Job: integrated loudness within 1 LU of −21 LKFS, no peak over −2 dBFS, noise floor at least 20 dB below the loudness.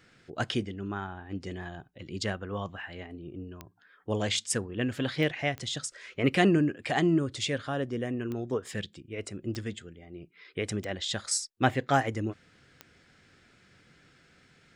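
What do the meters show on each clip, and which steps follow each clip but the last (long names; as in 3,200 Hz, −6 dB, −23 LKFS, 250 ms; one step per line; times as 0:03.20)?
number of clicks 7; integrated loudness −31.0 LKFS; sample peak −8.5 dBFS; target loudness −21.0 LKFS
→ click removal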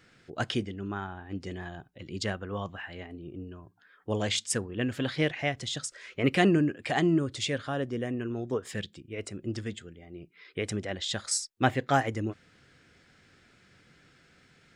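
number of clicks 0; integrated loudness −31.0 LKFS; sample peak −8.5 dBFS; target loudness −21.0 LKFS
→ level +10 dB
brickwall limiter −2 dBFS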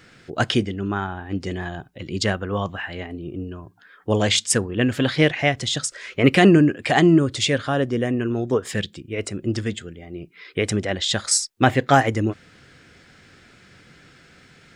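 integrated loudness −21.0 LKFS; sample peak −2.0 dBFS; background noise floor −52 dBFS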